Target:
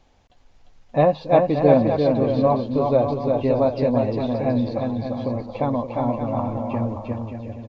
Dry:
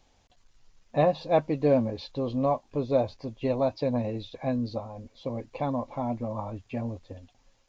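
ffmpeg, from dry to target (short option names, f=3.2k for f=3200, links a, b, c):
-filter_complex "[0:a]highshelf=f=4.4k:g=-11.5,asplit=2[a][b];[b]aecho=0:1:350|577.5|725.4|821.5|884:0.631|0.398|0.251|0.158|0.1[c];[a][c]amix=inputs=2:normalize=0,volume=6dB"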